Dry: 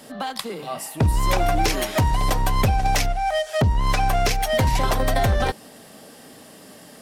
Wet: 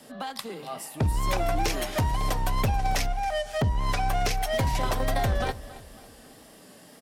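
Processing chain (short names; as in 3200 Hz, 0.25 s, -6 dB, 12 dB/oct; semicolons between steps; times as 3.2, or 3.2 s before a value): wow and flutter 45 cents; on a send: feedback echo 0.274 s, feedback 43%, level -17.5 dB; on the sum: gain -6 dB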